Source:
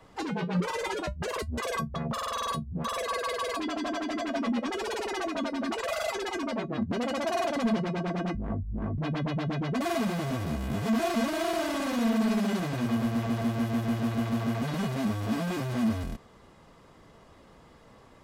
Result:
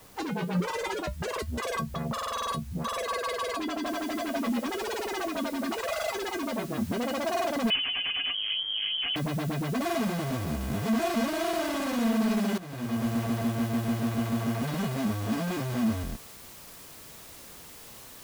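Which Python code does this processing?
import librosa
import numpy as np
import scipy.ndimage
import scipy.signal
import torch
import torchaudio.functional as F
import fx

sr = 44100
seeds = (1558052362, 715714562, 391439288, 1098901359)

y = fx.noise_floor_step(x, sr, seeds[0], at_s=3.86, before_db=-56, after_db=-48, tilt_db=0.0)
y = fx.freq_invert(y, sr, carrier_hz=3200, at=(7.7, 9.16))
y = fx.edit(y, sr, fx.fade_in_from(start_s=12.58, length_s=0.51, floor_db=-14.5), tone=tone)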